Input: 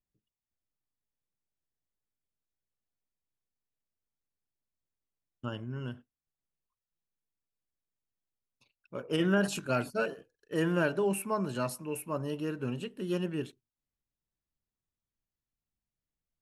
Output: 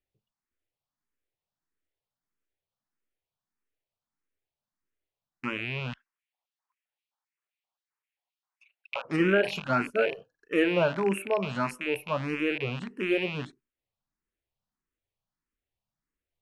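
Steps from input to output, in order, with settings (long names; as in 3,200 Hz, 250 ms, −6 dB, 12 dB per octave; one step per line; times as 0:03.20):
loose part that buzzes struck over −45 dBFS, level −27 dBFS
bass and treble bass −5 dB, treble −9 dB
0:05.93–0:09.05: auto-filter high-pass square 3.8 Hz 840–2,300 Hz
high-shelf EQ 11,000 Hz −11 dB
frequency shifter mixed with the dry sound +1.6 Hz
level +8 dB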